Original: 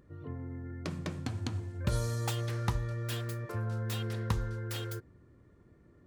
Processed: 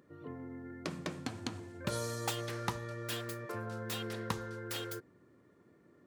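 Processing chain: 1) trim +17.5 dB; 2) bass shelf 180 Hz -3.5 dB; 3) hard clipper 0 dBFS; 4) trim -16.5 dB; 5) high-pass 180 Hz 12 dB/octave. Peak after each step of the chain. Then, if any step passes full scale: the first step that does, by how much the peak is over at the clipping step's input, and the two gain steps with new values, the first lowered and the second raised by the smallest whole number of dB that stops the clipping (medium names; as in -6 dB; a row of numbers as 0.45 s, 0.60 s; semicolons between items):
-1.0 dBFS, -1.5 dBFS, -1.5 dBFS, -18.0 dBFS, -18.0 dBFS; nothing clips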